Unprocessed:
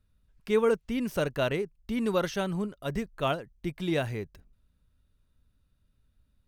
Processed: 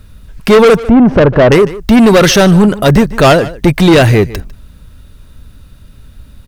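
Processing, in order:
0:00.79–0:01.52: low-pass filter 1,000 Hz 12 dB per octave
soft clipping −31 dBFS, distortion −7 dB
single-tap delay 150 ms −21 dB
boost into a limiter +33.5 dB
level −1 dB

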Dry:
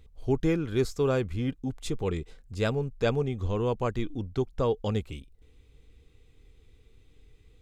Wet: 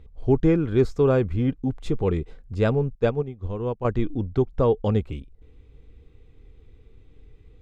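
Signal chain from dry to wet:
low-pass filter 1,200 Hz 6 dB per octave
0:02.95–0:03.85: expander for the loud parts 2.5 to 1, over −35 dBFS
level +7 dB

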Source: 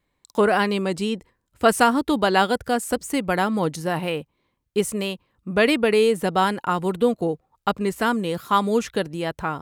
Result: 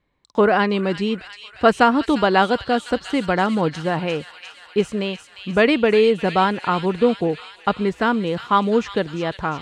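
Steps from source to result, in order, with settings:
high-frequency loss of the air 140 metres
delay with a high-pass on its return 351 ms, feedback 72%, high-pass 2,700 Hz, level −5.5 dB
level +3 dB

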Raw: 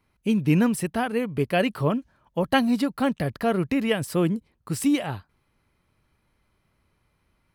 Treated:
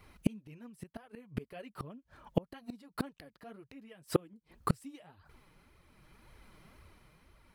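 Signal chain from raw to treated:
amplitude tremolo 0.61 Hz, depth 48%
flanger 1.9 Hz, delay 1.4 ms, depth 5.3 ms, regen +1%
gate with flip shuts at −27 dBFS, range −37 dB
level +14 dB

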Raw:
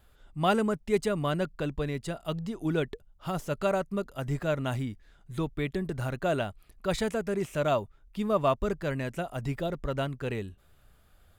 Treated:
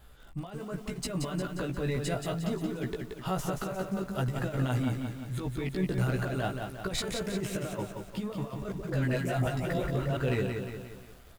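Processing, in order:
compressor whose output falls as the input rises −32 dBFS, ratio −0.5
soft clipping −22.5 dBFS, distortion −21 dB
double-tracking delay 16 ms −3 dB
0:08.72–0:10.17: all-pass dispersion highs, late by 120 ms, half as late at 340 Hz
feedback echo at a low word length 177 ms, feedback 55%, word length 9 bits, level −5 dB

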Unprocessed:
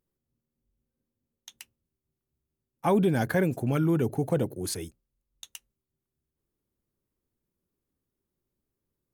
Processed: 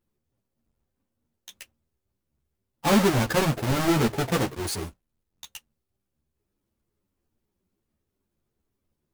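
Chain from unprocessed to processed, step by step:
each half-wave held at its own peak
string-ensemble chorus
level +2.5 dB

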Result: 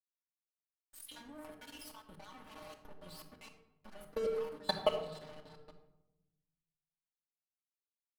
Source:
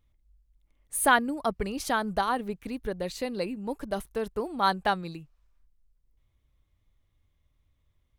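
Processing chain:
time-frequency cells dropped at random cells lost 58%
comb filter 4.7 ms, depth 91%
feedback delay with all-pass diffusion 474 ms, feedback 59%, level −16 dB
0:00.99–0:03.79: volume swells 245 ms
stiff-string resonator 150 Hz, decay 0.28 s, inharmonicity 0.002
output level in coarse steps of 19 dB
notch filter 7,200 Hz, Q 5.5
hum removal 114.2 Hz, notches 33
dead-zone distortion −58 dBFS
convolution reverb RT60 0.95 s, pre-delay 3 ms, DRR 2.5 dB
one half of a high-frequency compander decoder only
level +12 dB

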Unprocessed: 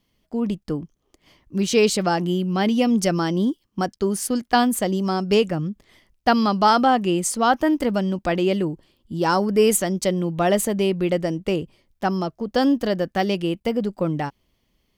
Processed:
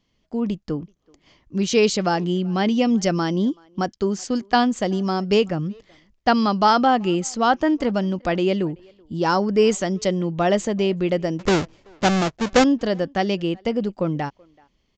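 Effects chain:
0:11.39–0:12.64: each half-wave held at its own peak
far-end echo of a speakerphone 380 ms, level −27 dB
downsampling to 16,000 Hz

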